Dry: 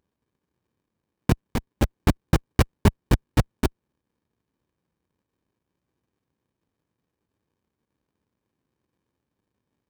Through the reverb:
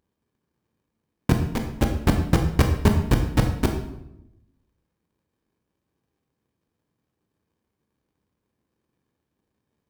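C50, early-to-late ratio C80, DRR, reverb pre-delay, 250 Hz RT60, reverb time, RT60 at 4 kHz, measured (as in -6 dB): 7.0 dB, 9.5 dB, 4.0 dB, 17 ms, 1.2 s, 0.90 s, 0.60 s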